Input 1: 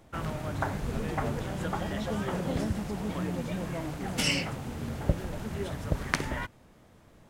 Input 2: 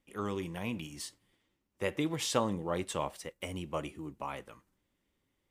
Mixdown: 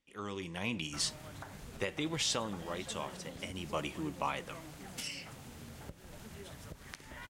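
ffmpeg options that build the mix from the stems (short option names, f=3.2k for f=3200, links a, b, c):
-filter_complex "[0:a]acompressor=threshold=-31dB:ratio=10,adelay=800,volume=-13.5dB[a];[1:a]lowpass=6.3k,dynaudnorm=f=180:g=7:m=10dB,volume=3.5dB,afade=t=out:st=1.87:d=0.77:silence=0.334965,afade=t=in:st=3.48:d=0.68:silence=0.281838[b];[a][b]amix=inputs=2:normalize=0,highshelf=f=2.1k:g=11,alimiter=limit=-21.5dB:level=0:latency=1:release=246"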